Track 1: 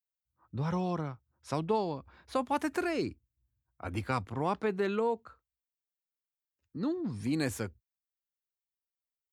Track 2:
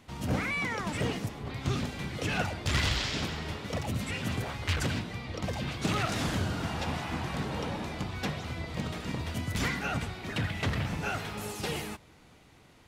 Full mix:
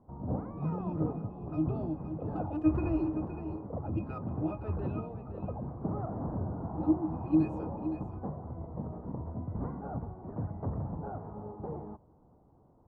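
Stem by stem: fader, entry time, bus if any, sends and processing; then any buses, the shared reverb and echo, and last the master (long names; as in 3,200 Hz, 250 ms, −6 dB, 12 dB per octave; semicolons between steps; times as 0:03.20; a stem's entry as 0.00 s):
+2.0 dB, 0.00 s, no send, echo send −10 dB, low-pass that shuts in the quiet parts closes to 960 Hz, open at −28 dBFS; parametric band 310 Hz +9 dB 0.28 octaves; resonances in every octave D#, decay 0.12 s
−3.5 dB, 0.00 s, no send, no echo send, Butterworth low-pass 1,000 Hz 36 dB per octave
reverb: not used
echo: single-tap delay 516 ms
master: no processing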